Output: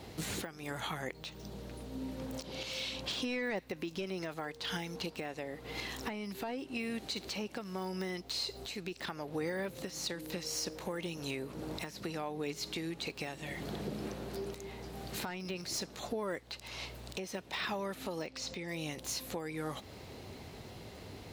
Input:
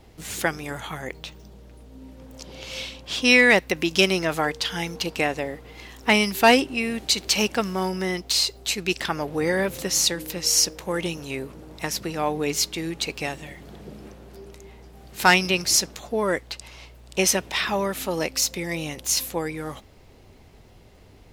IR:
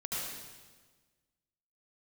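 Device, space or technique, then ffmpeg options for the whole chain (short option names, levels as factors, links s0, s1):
broadcast voice chain: -filter_complex "[0:a]asettb=1/sr,asplit=3[s0][s1][s2];[s0]atrim=end=18.224[s3];[s1]atrim=start=18.22:end=18.68,asetpts=PTS-STARTPTS,afade=t=in:d=0.004:c=qsin,afade=t=out:st=0.456:d=0.004:c=qsin,lowpass=6200[s4];[s2]atrim=start=18.676[s5];[s3][s4]acrossfade=d=0.004:c1=hsin:c2=qsin[s6];[s6][s5]acrossfade=d=0.004:c1=qsin:c2=hsin,highpass=88,deesser=0.85,acompressor=threshold=0.0112:ratio=5,equalizer=f=4100:t=o:w=0.29:g=5,alimiter=level_in=2.11:limit=0.0631:level=0:latency=1:release=368,volume=0.473,volume=1.68"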